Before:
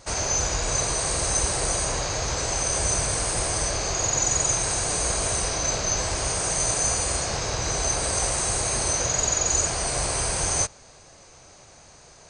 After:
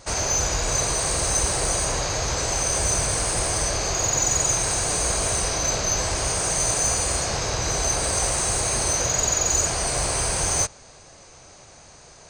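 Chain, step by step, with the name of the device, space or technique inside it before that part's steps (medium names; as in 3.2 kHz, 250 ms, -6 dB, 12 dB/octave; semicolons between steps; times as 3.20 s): parallel distortion (in parallel at -10.5 dB: hard clipper -24.5 dBFS, distortion -10 dB)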